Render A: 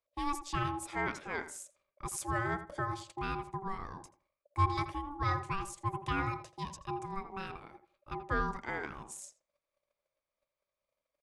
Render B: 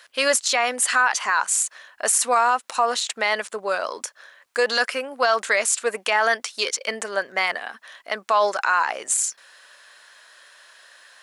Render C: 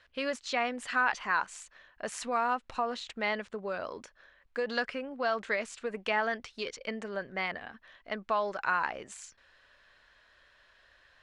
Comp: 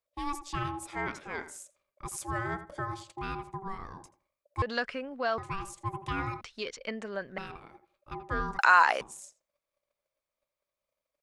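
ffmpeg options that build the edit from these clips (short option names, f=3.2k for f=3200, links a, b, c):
-filter_complex "[2:a]asplit=2[a][b];[0:a]asplit=4[c][d][e][f];[c]atrim=end=4.622[g];[a]atrim=start=4.618:end=5.382[h];[d]atrim=start=5.378:end=6.412[i];[b]atrim=start=6.408:end=7.382[j];[e]atrim=start=7.378:end=8.592[k];[1:a]atrim=start=8.588:end=9.012[l];[f]atrim=start=9.008[m];[g][h]acrossfade=d=0.004:c1=hsin:c2=hsin[n];[n][i]acrossfade=d=0.004:c1=hsin:c2=hsin[o];[o][j]acrossfade=d=0.004:c1=hsin:c2=hsin[p];[p][k]acrossfade=d=0.004:c1=hsin:c2=hsin[q];[q][l]acrossfade=d=0.004:c1=hsin:c2=hsin[r];[r][m]acrossfade=d=0.004:c1=hsin:c2=hsin"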